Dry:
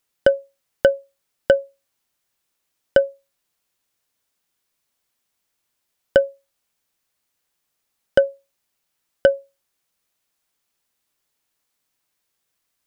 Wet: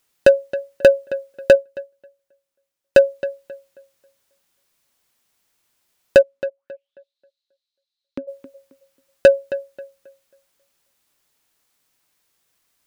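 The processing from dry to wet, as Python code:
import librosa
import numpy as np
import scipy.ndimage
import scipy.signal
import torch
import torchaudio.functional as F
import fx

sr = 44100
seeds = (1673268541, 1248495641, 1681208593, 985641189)

y = np.clip(x, -10.0 ** (-10.5 / 20.0), 10.0 ** (-10.5 / 20.0))
y = fx.auto_wah(y, sr, base_hz=270.0, top_hz=4100.0, q=10.0, full_db=-29.5, direction='down', at=(6.21, 8.27), fade=0.02)
y = fx.echo_tape(y, sr, ms=269, feedback_pct=29, wet_db=-12.5, lp_hz=2800.0, drive_db=9.0, wow_cents=14)
y = fx.upward_expand(y, sr, threshold_db=-44.0, expansion=1.5, at=(1.55, 2.97))
y = y * 10.0 ** (6.5 / 20.0)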